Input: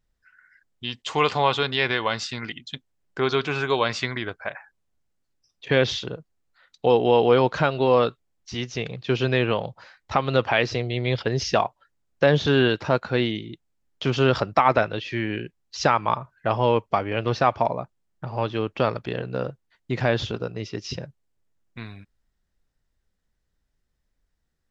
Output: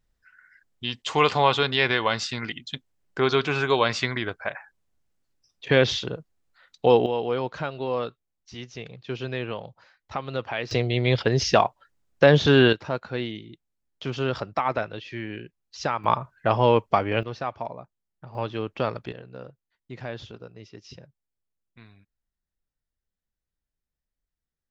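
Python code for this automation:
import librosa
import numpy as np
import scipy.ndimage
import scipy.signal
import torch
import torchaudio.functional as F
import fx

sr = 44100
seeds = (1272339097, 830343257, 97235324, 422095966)

y = fx.gain(x, sr, db=fx.steps((0.0, 1.0), (7.06, -9.0), (10.71, 2.5), (12.73, -7.0), (16.04, 1.5), (17.23, -10.5), (18.35, -4.0), (19.12, -13.0)))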